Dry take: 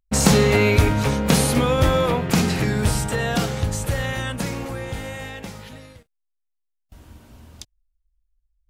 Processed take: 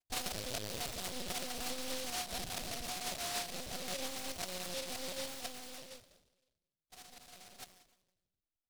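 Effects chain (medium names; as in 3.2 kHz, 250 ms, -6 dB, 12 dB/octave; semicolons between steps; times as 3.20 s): tracing distortion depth 0.25 ms; vowel filter a; peaking EQ 1.9 kHz -8 dB 1.4 oct; on a send: frequency-shifting echo 158 ms, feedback 32%, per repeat -48 Hz, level -18 dB; on the sum: simulated room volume 3700 m³, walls furnished, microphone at 1.9 m; compression 6:1, threshold -47 dBFS, peak gain reduction 19.5 dB; comb 5.4 ms, depth 78%; phaser 0.84 Hz, delay 4.8 ms, feedback 29%; LPC vocoder at 8 kHz pitch kept; delay time shaken by noise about 3.9 kHz, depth 0.28 ms; trim +5.5 dB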